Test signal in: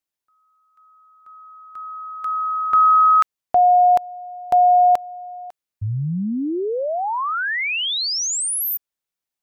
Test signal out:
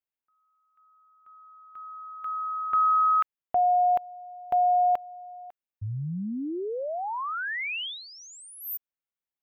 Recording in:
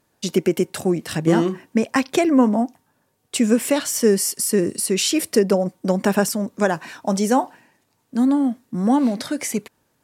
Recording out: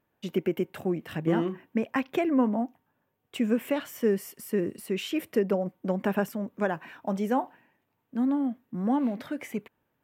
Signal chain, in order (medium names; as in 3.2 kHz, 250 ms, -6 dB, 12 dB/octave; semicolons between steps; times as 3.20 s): high-order bell 6.7 kHz -15.5 dB; trim -8.5 dB